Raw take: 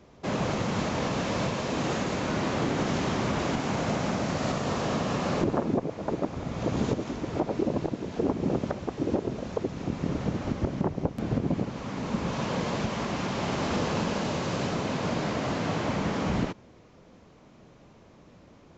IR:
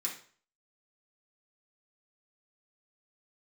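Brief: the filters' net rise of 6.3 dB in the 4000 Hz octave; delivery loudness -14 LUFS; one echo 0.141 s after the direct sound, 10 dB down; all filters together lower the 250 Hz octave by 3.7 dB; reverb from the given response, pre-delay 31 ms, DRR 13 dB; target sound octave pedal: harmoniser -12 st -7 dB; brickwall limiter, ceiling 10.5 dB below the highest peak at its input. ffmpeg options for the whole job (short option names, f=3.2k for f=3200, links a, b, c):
-filter_complex "[0:a]equalizer=f=250:t=o:g=-5,equalizer=f=4k:t=o:g=8,alimiter=level_in=1.5dB:limit=-24dB:level=0:latency=1,volume=-1.5dB,aecho=1:1:141:0.316,asplit=2[a][b];[1:a]atrim=start_sample=2205,adelay=31[c];[b][c]afir=irnorm=-1:irlink=0,volume=-15dB[d];[a][d]amix=inputs=2:normalize=0,asplit=2[e][f];[f]asetrate=22050,aresample=44100,atempo=2,volume=-7dB[g];[e][g]amix=inputs=2:normalize=0,volume=19.5dB"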